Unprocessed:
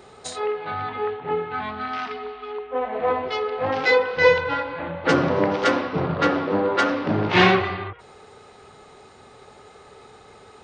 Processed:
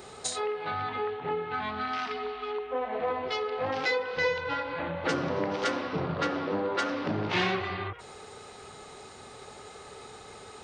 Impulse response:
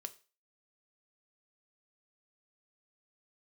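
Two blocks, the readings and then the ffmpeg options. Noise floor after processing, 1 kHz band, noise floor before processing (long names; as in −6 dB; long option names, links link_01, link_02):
−48 dBFS, −7.5 dB, −48 dBFS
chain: -af "highshelf=frequency=4600:gain=9.5,acompressor=threshold=-31dB:ratio=2.5"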